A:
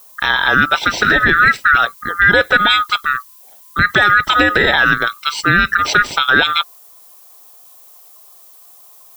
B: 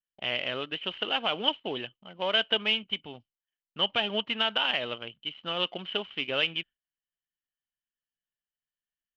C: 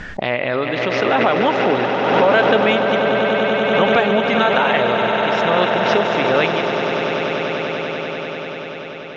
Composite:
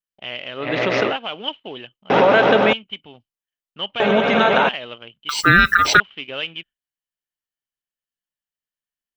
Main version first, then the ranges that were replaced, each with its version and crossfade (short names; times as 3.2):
B
0.64–1.1 from C, crossfade 0.16 s
2.1–2.73 from C
4–4.69 from C
5.29–6 from A